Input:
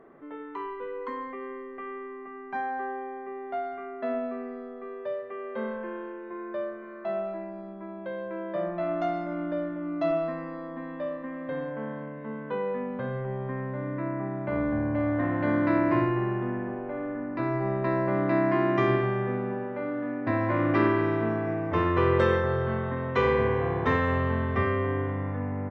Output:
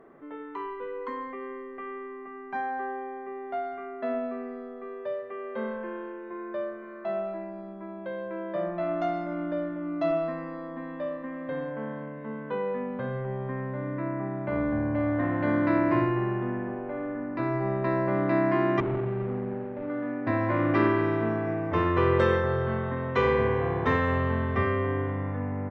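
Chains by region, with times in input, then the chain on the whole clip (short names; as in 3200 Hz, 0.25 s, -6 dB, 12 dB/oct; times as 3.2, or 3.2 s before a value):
18.8–19.9 median filter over 41 samples + hard clip -25 dBFS + Gaussian blur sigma 3.9 samples
whole clip: dry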